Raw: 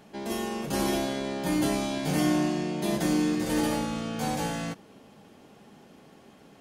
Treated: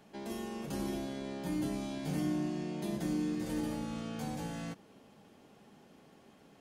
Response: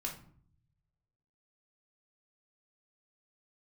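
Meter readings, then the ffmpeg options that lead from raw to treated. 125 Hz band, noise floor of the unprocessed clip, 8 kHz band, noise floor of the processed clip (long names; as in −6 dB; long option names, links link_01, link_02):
−6.5 dB, −54 dBFS, −13.0 dB, −61 dBFS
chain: -filter_complex "[0:a]acrossover=split=350[link_01][link_02];[link_02]acompressor=threshold=-37dB:ratio=4[link_03];[link_01][link_03]amix=inputs=2:normalize=0,volume=-6.5dB"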